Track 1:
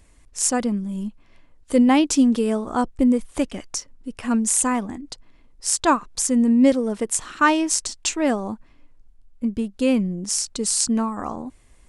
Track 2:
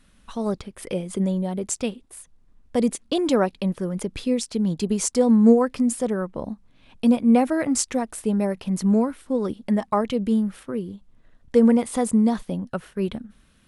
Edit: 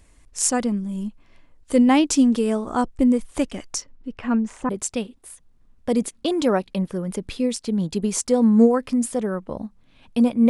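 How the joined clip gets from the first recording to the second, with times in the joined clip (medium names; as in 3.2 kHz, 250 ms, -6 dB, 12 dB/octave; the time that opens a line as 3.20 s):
track 1
3.81–4.69 s: low-pass 6.1 kHz -> 1.3 kHz
4.69 s: go over to track 2 from 1.56 s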